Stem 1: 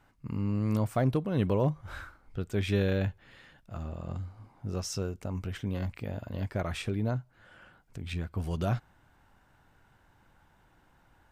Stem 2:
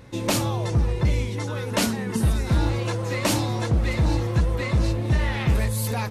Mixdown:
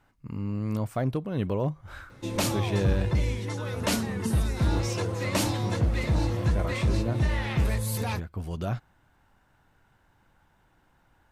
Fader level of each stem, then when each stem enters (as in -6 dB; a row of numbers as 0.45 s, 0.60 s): -1.0 dB, -4.0 dB; 0.00 s, 2.10 s